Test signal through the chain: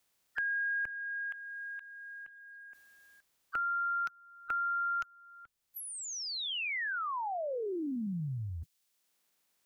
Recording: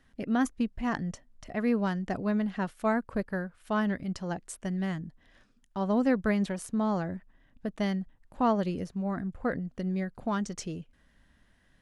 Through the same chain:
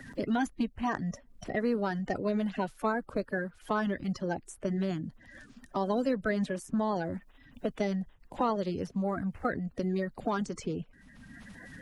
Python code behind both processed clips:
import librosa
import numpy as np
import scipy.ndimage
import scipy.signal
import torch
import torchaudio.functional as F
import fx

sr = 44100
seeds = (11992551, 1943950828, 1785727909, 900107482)

y = fx.spec_quant(x, sr, step_db=30)
y = fx.band_squash(y, sr, depth_pct=70)
y = y * 10.0 ** (-1.0 / 20.0)